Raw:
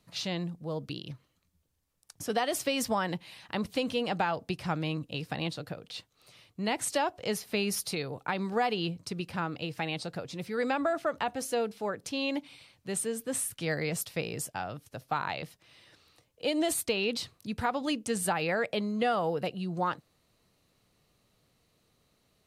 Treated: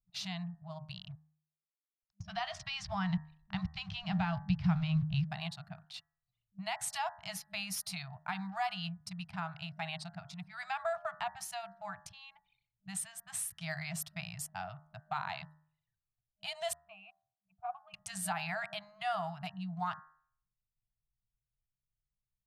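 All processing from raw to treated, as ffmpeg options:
-filter_complex "[0:a]asettb=1/sr,asplit=3[a][b][c];[a]atrim=end=0.974[d];[b]atrim=start=0.97:end=5.25,asetpts=PTS-STARTPTS,afade=t=in:d=0.004:c=qsin,afade=t=out:st=4.276:d=0.004:c=qsin,aeval=exprs='val(0)*gte(abs(val(0)),0.00422)':c=same,lowpass=f=5.5k:w=0.5412,lowpass=f=5.5k:w=1.3066,asubboost=boost=9.5:cutoff=190[e];[c]atrim=start=5.246[f];[d][e]acrossfade=d=0.004:c1=hsin:c2=qsin[g];[g][f]acrossfade=d=0.004:c1=qsin:c2=hsin,asettb=1/sr,asplit=3[h][i][j];[h]atrim=end=12.044[k];[i]atrim=start=12.04:end=12.5,asetpts=PTS-STARTPTS,afade=t=in:d=0.004:c=qsin,afade=t=out:st=0.456:d=0.004:c=qsin,lowshelf=f=190:g=10.5,acompressor=threshold=-38dB:ratio=5:attack=3.2:release=140:knee=1:detection=peak[l];[j]atrim=start=12.496[m];[k][l]acrossfade=d=0.004:c1=hsin:c2=qsin[n];[n][m]acrossfade=d=0.004:c1=qsin:c2=hsin,asettb=1/sr,asplit=3[o][p][q];[o]atrim=end=16.734[r];[p]atrim=start=16.73:end=17.94,asetpts=PTS-STARTPTS,afade=t=in:d=0.004:c=qsin,afade=t=out:st=1.206:d=0.004:c=qsin,asplit=3[s][t][u];[s]bandpass=f=730:t=q:w=8,volume=0dB[v];[t]bandpass=f=1.09k:t=q:w=8,volume=-6dB[w];[u]bandpass=f=2.44k:t=q:w=8,volume=-9dB[x];[v][w][x]amix=inputs=3:normalize=0,bass=f=250:g=13,treble=f=4k:g=-13,bandreject=f=60:t=h:w=6,bandreject=f=120:t=h:w=6,bandreject=f=180:t=h:w=6,bandreject=f=240:t=h:w=6,bandreject=f=300:t=h:w=6,bandreject=f=360:t=h:w=6[y];[q]atrim=start=17.936[z];[r][y]acrossfade=d=0.004:c1=hsin:c2=qsin[aa];[aa][z]acrossfade=d=0.004:c1=qsin:c2=hsin,anlmdn=0.1,bandreject=f=77.24:t=h:w=4,bandreject=f=154.48:t=h:w=4,bandreject=f=231.72:t=h:w=4,bandreject=f=308.96:t=h:w=4,bandreject=f=386.2:t=h:w=4,bandreject=f=463.44:t=h:w=4,bandreject=f=540.68:t=h:w=4,bandreject=f=617.92:t=h:w=4,bandreject=f=695.16:t=h:w=4,bandreject=f=772.4:t=h:w=4,bandreject=f=849.64:t=h:w=4,bandreject=f=926.88:t=h:w=4,bandreject=f=1.00412k:t=h:w=4,bandreject=f=1.08136k:t=h:w=4,bandreject=f=1.1586k:t=h:w=4,bandreject=f=1.23584k:t=h:w=4,bandreject=f=1.31308k:t=h:w=4,bandreject=f=1.39032k:t=h:w=4,bandreject=f=1.46756k:t=h:w=4,bandreject=f=1.5448k:t=h:w=4,bandreject=f=1.62204k:t=h:w=4,bandreject=f=1.69928k:t=h:w=4,bandreject=f=1.77652k:t=h:w=4,bandreject=f=1.85376k:t=h:w=4,bandreject=f=1.931k:t=h:w=4,afftfilt=real='re*(1-between(b*sr/4096,200,620))':imag='im*(1-between(b*sr/4096,200,620))':win_size=4096:overlap=0.75,volume=-5dB"

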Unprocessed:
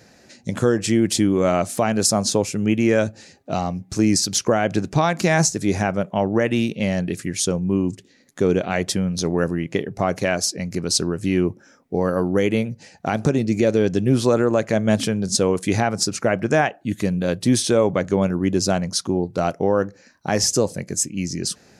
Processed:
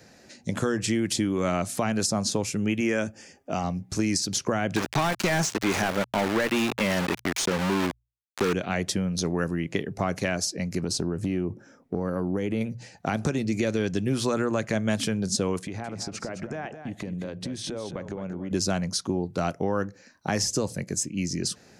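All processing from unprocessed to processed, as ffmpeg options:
-filter_complex "[0:a]asettb=1/sr,asplit=3[a][b][c];[a]atrim=end=2.804[d];[b]atrim=start=2.8:end=3.64,asetpts=PTS-STARTPTS,afade=t=in:d=0.004:c=qsin,afade=t=out:st=0.836:d=0.004:c=qsin,asuperstop=centerf=4000:order=4:qfactor=3.8,equalizer=f=120:t=o:w=0.75:g=-9.5[e];[c]atrim=start=3.636[f];[d][e]acrossfade=d=0.004:c1=hsin:c2=qsin[g];[g][f]acrossfade=d=0.004:c1=qsin:c2=hsin,asettb=1/sr,asplit=3[h][i][j];[h]atrim=end=4.764[k];[i]atrim=start=4.76:end=8.53,asetpts=PTS-STARTPTS,afade=t=in:d=0.004:c=qsin,afade=t=out:st=3.766:d=0.004:c=qsin,aeval=exprs='val(0)*gte(abs(val(0)),0.0562)':c=same,asplit=2[l][m];[m]highpass=f=720:p=1,volume=18dB,asoftclip=type=tanh:threshold=-6.5dB[n];[l][n]amix=inputs=2:normalize=0,lowpass=f=3.3k:p=1,volume=-6dB[o];[j]atrim=start=8.526[p];[k][o]acrossfade=d=0.004:c1=hsin:c2=qsin[q];[q][p]acrossfade=d=0.004:c1=qsin:c2=hsin,asettb=1/sr,asplit=3[r][s][t];[r]atrim=end=10.824[u];[s]atrim=start=10.82:end=12.61,asetpts=PTS-STARTPTS,afade=t=in:d=0.004:c=qsin,afade=t=out:st=1.786:d=0.004:c=qsin,tiltshelf=f=1.1k:g=4.5,acompressor=threshold=-20dB:ratio=3:attack=3.2:release=140:knee=1:detection=peak[v];[t]atrim=start=12.606[w];[u][v]acrossfade=d=0.004:c1=hsin:c2=qsin[x];[x][w]acrossfade=d=0.004:c1=qsin:c2=hsin,asettb=1/sr,asplit=3[y][z][aa];[y]atrim=end=15.624[ab];[z]atrim=start=15.62:end=18.51,asetpts=PTS-STARTPTS,afade=t=in:d=0.004:c=qsin,afade=t=out:st=2.886:d=0.004:c=qsin,aemphasis=mode=reproduction:type=50fm,acompressor=threshold=-27dB:ratio=12:attack=3.2:release=140:knee=1:detection=peak,aecho=1:1:214:0.316,atrim=end_sample=127449[ac];[aa]atrim=start=18.506[ad];[ab][ac]acrossfade=d=0.004:c1=hsin:c2=qsin[ae];[ae][ad]acrossfade=d=0.004:c1=qsin:c2=hsin,bandreject=f=60:t=h:w=6,bandreject=f=120:t=h:w=6,acrossover=split=320|890|7600[af][ag][ah][ai];[af]acompressor=threshold=-23dB:ratio=4[aj];[ag]acompressor=threshold=-31dB:ratio=4[ak];[ah]acompressor=threshold=-25dB:ratio=4[al];[ai]acompressor=threshold=-35dB:ratio=4[am];[aj][ak][al][am]amix=inputs=4:normalize=0,volume=-2dB"

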